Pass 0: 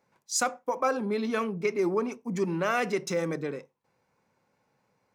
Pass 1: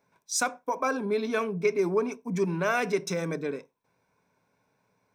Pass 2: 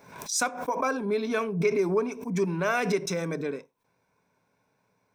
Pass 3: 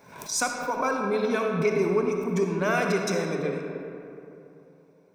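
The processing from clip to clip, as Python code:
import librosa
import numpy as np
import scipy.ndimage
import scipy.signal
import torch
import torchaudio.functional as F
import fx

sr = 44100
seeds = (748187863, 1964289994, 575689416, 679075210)

y1 = fx.ripple_eq(x, sr, per_octave=1.6, db=7)
y2 = fx.pre_swell(y1, sr, db_per_s=85.0)
y3 = fx.rev_freeverb(y2, sr, rt60_s=3.0, hf_ratio=0.45, predelay_ms=20, drr_db=2.5)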